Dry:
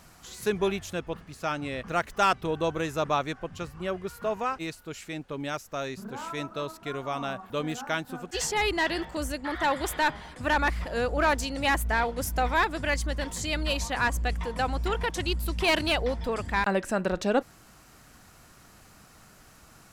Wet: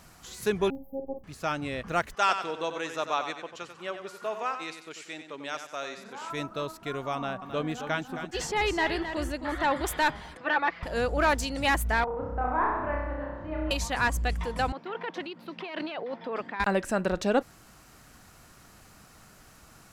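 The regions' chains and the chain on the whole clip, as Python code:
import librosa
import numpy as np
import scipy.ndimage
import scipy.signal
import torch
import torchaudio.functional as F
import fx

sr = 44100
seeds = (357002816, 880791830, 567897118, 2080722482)

y = fx.chain(x, sr, fx.brickwall_bandstop(low_hz=950.0, high_hz=13000.0),
    fx.robotise(hz=270.0),
    fx.doubler(ms=50.0, db=-7.0), at=(0.7, 1.24))
y = fx.chain(y, sr, fx.bandpass_edges(low_hz=220.0, high_hz=7900.0),
    fx.low_shelf(hz=480.0, db=-10.0),
    fx.echo_feedback(ms=93, feedback_pct=39, wet_db=-9), at=(2.15, 6.3))
y = fx.chain(y, sr, fx.high_shelf(hz=5300.0, db=-10.0),
    fx.echo_single(ms=266, db=-9.5), at=(7.15, 9.87))
y = fx.chain(y, sr, fx.bandpass_edges(low_hz=400.0, high_hz=6100.0),
    fx.air_absorb(metres=240.0),
    fx.comb(ms=6.0, depth=0.61), at=(10.37, 10.83))
y = fx.chain(y, sr, fx.ladder_lowpass(hz=1500.0, resonance_pct=30),
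    fx.room_flutter(wall_m=5.5, rt60_s=1.1), at=(12.04, 13.71))
y = fx.chain(y, sr, fx.over_compress(threshold_db=-30.0, ratio=-1.0),
    fx.bessel_highpass(hz=290.0, order=8),
    fx.air_absorb(metres=310.0), at=(14.72, 16.6))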